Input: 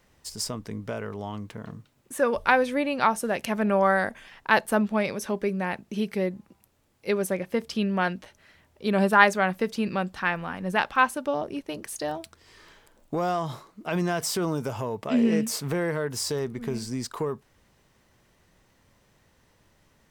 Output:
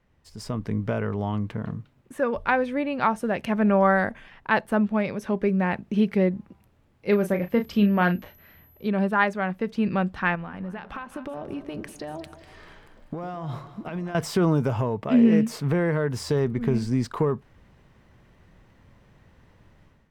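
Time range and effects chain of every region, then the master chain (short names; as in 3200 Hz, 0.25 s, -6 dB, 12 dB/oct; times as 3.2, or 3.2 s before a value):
7.1–8.87 doubler 34 ms -9 dB + whine 12000 Hz -44 dBFS
10.35–14.15 compressor 12:1, threshold -35 dBFS + split-band echo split 630 Hz, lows 0.105 s, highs 0.196 s, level -13 dB
whole clip: tone controls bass +6 dB, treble -13 dB; AGC gain up to 11.5 dB; gain -7 dB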